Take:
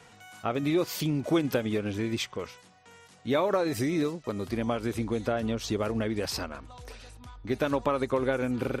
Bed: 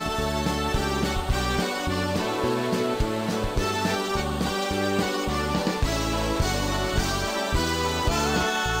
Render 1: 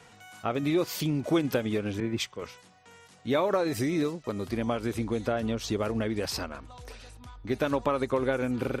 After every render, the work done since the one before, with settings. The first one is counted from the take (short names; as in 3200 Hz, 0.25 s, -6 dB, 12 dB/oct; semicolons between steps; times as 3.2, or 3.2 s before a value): 2–2.42 three-band expander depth 100%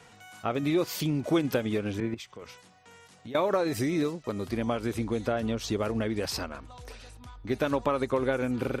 2.14–3.35 compressor, threshold -39 dBFS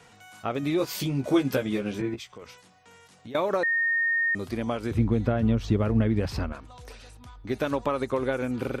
0.78–2.38 doubler 15 ms -4 dB; 3.63–4.35 bleep 1840 Hz -21.5 dBFS; 4.91–6.53 tone controls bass +12 dB, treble -11 dB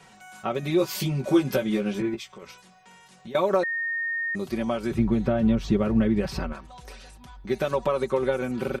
dynamic EQ 1800 Hz, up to -5 dB, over -39 dBFS, Q 2.1; comb 5.3 ms, depth 77%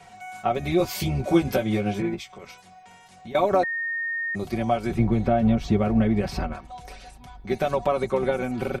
octaver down 1 oct, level -5 dB; small resonant body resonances 720/2200 Hz, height 14 dB, ringing for 70 ms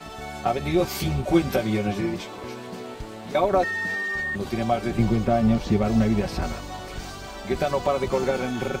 add bed -11.5 dB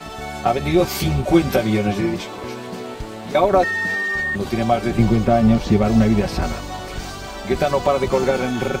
gain +5.5 dB; limiter -3 dBFS, peak gain reduction 1 dB